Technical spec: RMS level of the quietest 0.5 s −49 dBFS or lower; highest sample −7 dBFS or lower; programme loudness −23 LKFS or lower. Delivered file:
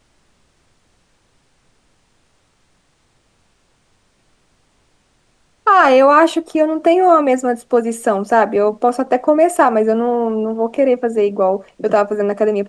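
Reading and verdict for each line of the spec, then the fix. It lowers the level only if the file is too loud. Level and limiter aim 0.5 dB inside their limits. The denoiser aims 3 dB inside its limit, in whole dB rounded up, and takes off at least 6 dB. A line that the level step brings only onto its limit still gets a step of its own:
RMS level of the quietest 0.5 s −59 dBFS: in spec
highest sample −2.5 dBFS: out of spec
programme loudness −14.5 LKFS: out of spec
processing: level −9 dB

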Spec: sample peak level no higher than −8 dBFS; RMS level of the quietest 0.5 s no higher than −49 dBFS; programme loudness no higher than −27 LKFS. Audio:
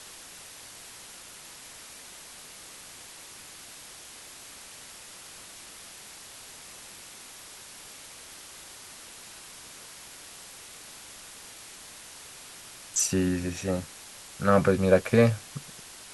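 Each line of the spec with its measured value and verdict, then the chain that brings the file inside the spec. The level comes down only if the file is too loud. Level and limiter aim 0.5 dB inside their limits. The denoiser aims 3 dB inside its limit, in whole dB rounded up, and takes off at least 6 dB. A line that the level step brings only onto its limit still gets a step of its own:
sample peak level −6.5 dBFS: out of spec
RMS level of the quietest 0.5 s −47 dBFS: out of spec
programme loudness −25.5 LKFS: out of spec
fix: broadband denoise 6 dB, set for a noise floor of −47 dBFS
level −2 dB

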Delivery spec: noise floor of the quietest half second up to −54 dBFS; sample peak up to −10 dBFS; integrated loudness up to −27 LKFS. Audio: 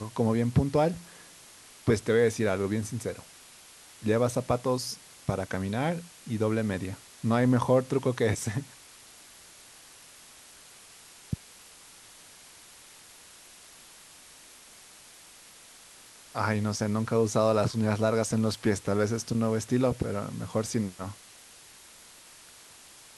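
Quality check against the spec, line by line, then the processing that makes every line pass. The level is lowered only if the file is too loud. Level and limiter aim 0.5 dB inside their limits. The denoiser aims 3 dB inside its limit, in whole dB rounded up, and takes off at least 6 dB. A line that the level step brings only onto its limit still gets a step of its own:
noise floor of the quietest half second −52 dBFS: out of spec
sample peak −10.5 dBFS: in spec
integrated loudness −28.5 LKFS: in spec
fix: broadband denoise 6 dB, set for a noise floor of −52 dBFS

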